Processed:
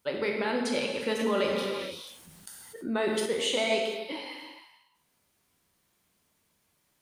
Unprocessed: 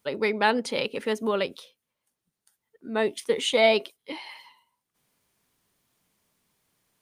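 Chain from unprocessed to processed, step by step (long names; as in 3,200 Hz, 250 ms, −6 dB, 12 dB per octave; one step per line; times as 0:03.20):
brickwall limiter −18 dBFS, peak gain reduction 11.5 dB
reverb whose tail is shaped and stops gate 500 ms falling, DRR 0 dB
0:01.19–0:03.26: envelope flattener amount 50%
level −2.5 dB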